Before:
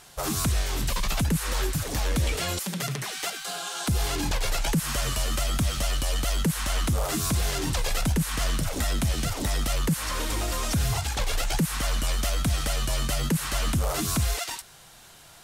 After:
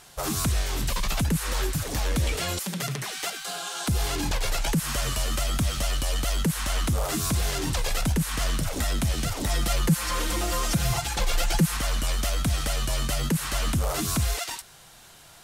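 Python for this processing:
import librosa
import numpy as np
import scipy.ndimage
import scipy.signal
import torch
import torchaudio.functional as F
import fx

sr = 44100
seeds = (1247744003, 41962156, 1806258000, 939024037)

y = fx.comb(x, sr, ms=5.8, depth=0.69, at=(9.49, 11.77))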